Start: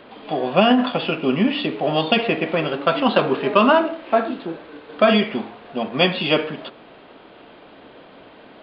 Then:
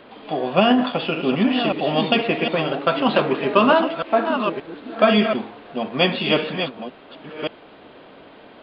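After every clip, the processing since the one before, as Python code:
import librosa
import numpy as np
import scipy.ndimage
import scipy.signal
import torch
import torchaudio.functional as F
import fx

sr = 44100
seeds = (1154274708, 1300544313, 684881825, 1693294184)

y = fx.reverse_delay(x, sr, ms=575, wet_db=-7)
y = y * librosa.db_to_amplitude(-1.0)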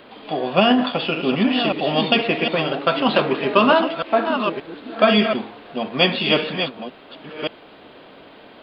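y = fx.high_shelf(x, sr, hz=4400.0, db=9.0)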